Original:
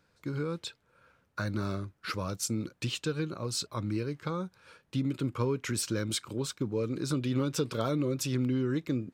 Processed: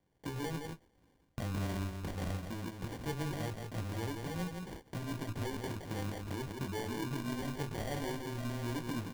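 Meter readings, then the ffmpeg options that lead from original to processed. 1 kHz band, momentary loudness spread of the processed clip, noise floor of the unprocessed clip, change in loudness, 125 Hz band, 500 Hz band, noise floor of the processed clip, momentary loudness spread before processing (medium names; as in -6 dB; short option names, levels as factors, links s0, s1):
-2.0 dB, 5 LU, -72 dBFS, -6.5 dB, -5.0 dB, -7.5 dB, -70 dBFS, 7 LU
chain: -filter_complex "[0:a]aresample=16000,asoftclip=type=tanh:threshold=0.0211,aresample=44100,acompressor=threshold=0.00501:ratio=12,flanger=delay=16.5:depth=4.2:speed=0.22,lowpass=f=3300:t=q:w=0.5098,lowpass=f=3300:t=q:w=0.6013,lowpass=f=3300:t=q:w=0.9,lowpass=f=3300:t=q:w=2.563,afreqshift=-3900,asplit=2[s0][s1];[s1]aecho=0:1:167:0.531[s2];[s0][s2]amix=inputs=2:normalize=0,agate=range=0.178:threshold=0.001:ratio=16:detection=peak,acrusher=samples=34:mix=1:aa=0.000001,volume=3.98"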